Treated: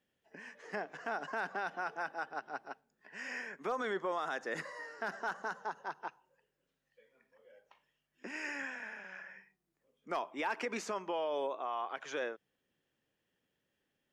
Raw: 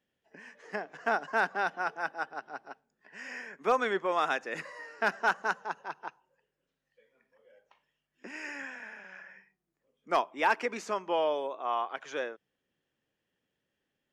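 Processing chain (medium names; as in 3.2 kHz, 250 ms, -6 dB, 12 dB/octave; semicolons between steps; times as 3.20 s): 3.68–6.03 s: peaking EQ 2.5 kHz -10 dB 0.28 oct; peak limiter -27 dBFS, peak gain reduction 11.5 dB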